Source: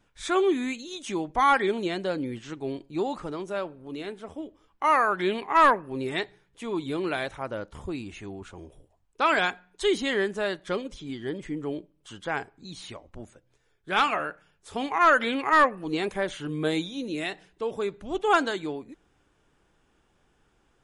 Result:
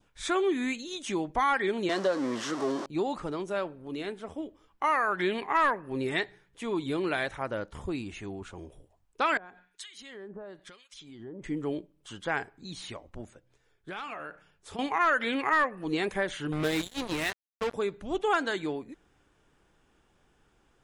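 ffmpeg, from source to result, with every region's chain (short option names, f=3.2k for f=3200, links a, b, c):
-filter_complex "[0:a]asettb=1/sr,asplit=3[a][b][c];[a]atrim=end=1.894[d];[b]atrim=start=1.89:end=2.86,asetpts=PTS-STARTPTS,afade=t=in:d=0.004:c=qsin,afade=t=out:st=0.966:d=0.004:c=qsin,aeval=exprs='val(0)+0.5*0.0251*sgn(val(0))':c=same,highpass=f=170:w=0.5412,highpass=f=170:w=1.3066,equalizer=f=170:t=q:w=4:g=-5,equalizer=f=590:t=q:w=4:g=8,equalizer=f=1.1k:t=q:w=4:g=10,equalizer=f=2.4k:t=q:w=4:g=-6,equalizer=f=5.6k:t=q:w=4:g=4,lowpass=f=8.7k:w=0.5412,lowpass=f=8.7k:w=1.3066[e];[c]atrim=start=2.856[f];[d][e]acrossfade=d=0.004:c1=hsin:c2=qsin[g];[g][f]acrossfade=d=0.004:c1=qsin:c2=hsin,asettb=1/sr,asplit=3[h][i][j];[h]atrim=end=9.374[k];[i]atrim=start=9.37:end=11.44,asetpts=PTS-STARTPTS,afade=t=in:d=0.004:c=qsin,afade=t=out:st=2.066:d=0.004:c=qsin,acompressor=threshold=-38dB:ratio=6:attack=3.2:release=140:knee=1:detection=peak,acrossover=split=1300[l][m];[l]aeval=exprs='val(0)*(1-1/2+1/2*cos(2*PI*1*n/s))':c=same[n];[m]aeval=exprs='val(0)*(1-1/2-1/2*cos(2*PI*1*n/s))':c=same[o];[n][o]amix=inputs=2:normalize=0[p];[j]atrim=start=11.436[q];[k][p]acrossfade=d=0.004:c1=hsin:c2=qsin[r];[r][q]acrossfade=d=0.004:c1=qsin:c2=hsin,asettb=1/sr,asplit=3[s][t][u];[s]atrim=end=13.214[v];[t]atrim=start=13.21:end=14.79,asetpts=PTS-STARTPTS,afade=t=in:d=0.004:c=qsin,afade=t=out:st=1.576:d=0.004:c=qsin,highshelf=f=9.7k:g=-5,acompressor=threshold=-36dB:ratio=6:attack=3.2:release=140:knee=1:detection=peak[w];[u]atrim=start=14.786[x];[v][w]acrossfade=d=0.004:c1=hsin:c2=qsin[y];[y][x]acrossfade=d=0.004:c1=qsin:c2=hsin,asettb=1/sr,asplit=3[z][aa][ab];[z]atrim=end=16.524[ac];[aa]atrim=start=16.52:end=17.74,asetpts=PTS-STARTPTS,afade=t=in:d=0.004:c=qsin,afade=t=out:st=1.216:d=0.004:c=qsin,asubboost=boost=6:cutoff=150,aeval=exprs='val(0)+0.00251*(sin(2*PI*60*n/s)+sin(2*PI*2*60*n/s)/2+sin(2*PI*3*60*n/s)/3+sin(2*PI*4*60*n/s)/4+sin(2*PI*5*60*n/s)/5)':c=same,acrusher=bits=4:mix=0:aa=0.5[ad];[ab]atrim=start=17.736[ae];[ac][ad]acrossfade=d=0.004:c1=hsin:c2=qsin[af];[af][ae]acrossfade=d=0.004:c1=qsin:c2=hsin,adynamicequalizer=threshold=0.00891:dfrequency=1800:dqfactor=2.8:tfrequency=1800:tqfactor=2.8:attack=5:release=100:ratio=0.375:range=2.5:mode=boostabove:tftype=bell,acompressor=threshold=-25dB:ratio=2.5"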